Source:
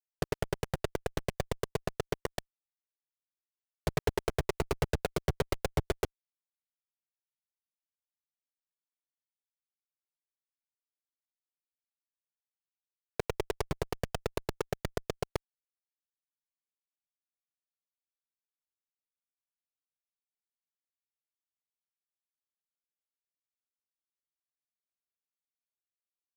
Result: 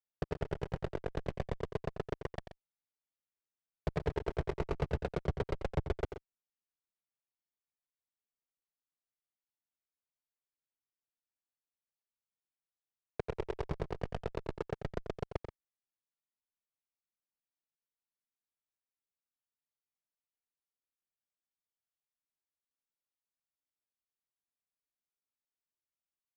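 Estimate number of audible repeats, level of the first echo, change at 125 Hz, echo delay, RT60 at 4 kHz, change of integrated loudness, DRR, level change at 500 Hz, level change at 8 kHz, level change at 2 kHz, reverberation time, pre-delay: 2, -10.0 dB, -2.0 dB, 89 ms, no reverb, -3.5 dB, no reverb, -3.5 dB, under -15 dB, -6.5 dB, no reverb, no reverb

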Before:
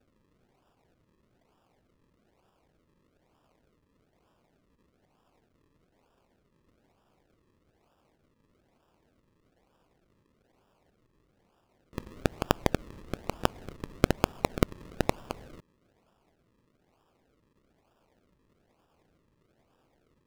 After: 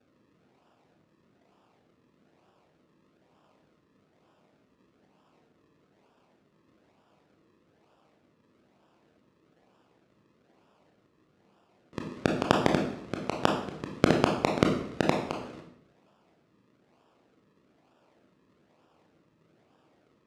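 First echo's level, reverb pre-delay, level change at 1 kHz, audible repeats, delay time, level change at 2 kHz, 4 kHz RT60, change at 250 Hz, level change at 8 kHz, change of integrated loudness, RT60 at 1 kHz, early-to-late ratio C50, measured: no echo, 20 ms, +4.5 dB, no echo, no echo, +4.5 dB, 0.55 s, +5.0 dB, 0.0 dB, +4.0 dB, 0.65 s, 5.5 dB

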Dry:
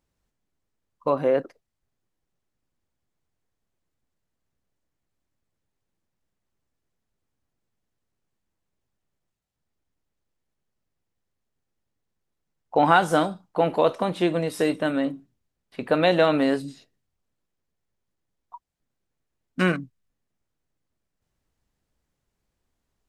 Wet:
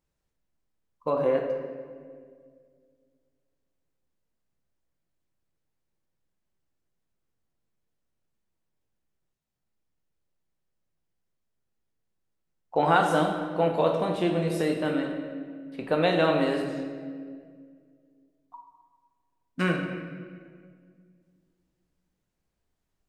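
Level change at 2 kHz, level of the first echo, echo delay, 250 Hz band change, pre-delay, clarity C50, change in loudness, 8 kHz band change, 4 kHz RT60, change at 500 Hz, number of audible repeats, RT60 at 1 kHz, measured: -3.5 dB, no echo, no echo, -2.5 dB, 6 ms, 4.5 dB, -3.5 dB, -4.0 dB, 1.3 s, -2.5 dB, no echo, 1.7 s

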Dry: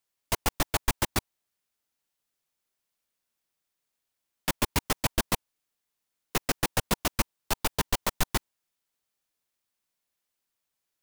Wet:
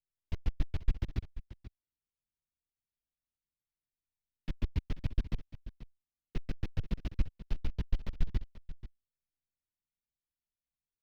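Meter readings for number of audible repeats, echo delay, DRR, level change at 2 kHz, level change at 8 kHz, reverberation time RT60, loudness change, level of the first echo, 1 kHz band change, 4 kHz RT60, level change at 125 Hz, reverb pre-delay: 1, 485 ms, no reverb, -20.5 dB, under -30 dB, no reverb, -10.0 dB, -14.5 dB, -25.0 dB, no reverb, -1.5 dB, no reverb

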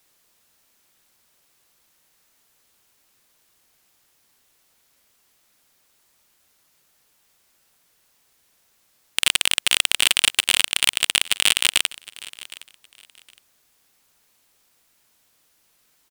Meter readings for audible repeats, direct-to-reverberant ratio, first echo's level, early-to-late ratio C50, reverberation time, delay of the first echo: 2, no reverb, -20.0 dB, no reverb, no reverb, 764 ms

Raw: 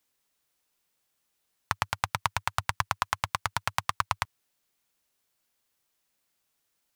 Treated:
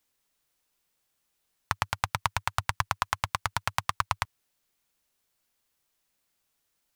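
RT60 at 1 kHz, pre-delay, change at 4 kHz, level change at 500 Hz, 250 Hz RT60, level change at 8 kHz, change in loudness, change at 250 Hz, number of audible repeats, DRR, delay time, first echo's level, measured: no reverb, no reverb, 0.0 dB, 0.0 dB, no reverb, 0.0 dB, 0.0 dB, +1.0 dB, no echo, no reverb, no echo, no echo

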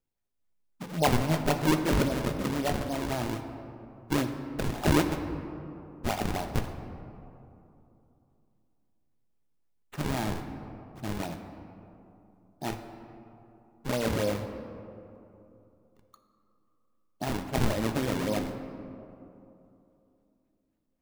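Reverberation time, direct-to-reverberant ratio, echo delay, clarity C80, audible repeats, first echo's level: 2.9 s, 5.0 dB, no echo, 9.0 dB, no echo, no echo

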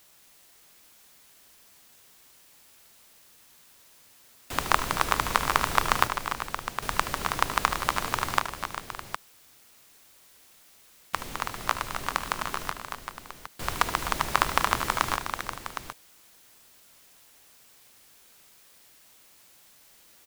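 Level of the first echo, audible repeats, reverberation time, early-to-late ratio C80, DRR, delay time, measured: -12.5 dB, 5, no reverb, no reverb, no reverb, 74 ms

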